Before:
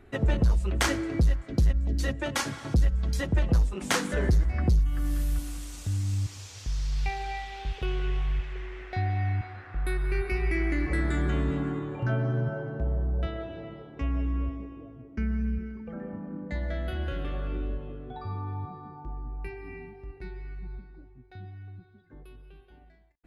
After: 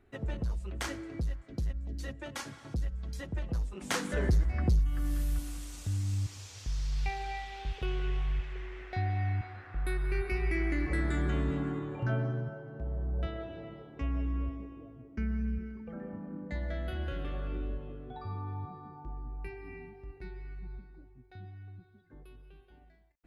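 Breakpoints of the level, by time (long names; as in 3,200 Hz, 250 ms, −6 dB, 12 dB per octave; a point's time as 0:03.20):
0:03.52 −11 dB
0:04.16 −3.5 dB
0:12.19 −3.5 dB
0:12.61 −11 dB
0:13.22 −4 dB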